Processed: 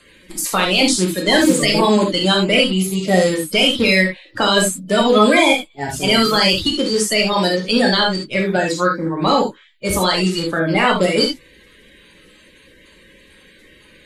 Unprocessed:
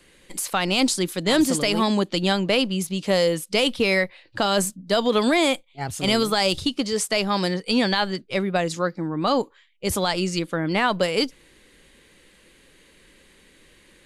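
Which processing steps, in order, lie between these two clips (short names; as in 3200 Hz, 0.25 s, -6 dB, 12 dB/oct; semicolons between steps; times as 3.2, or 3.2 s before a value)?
bin magnitudes rounded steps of 30 dB; non-linear reverb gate 0.1 s flat, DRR -0.5 dB; gain +4 dB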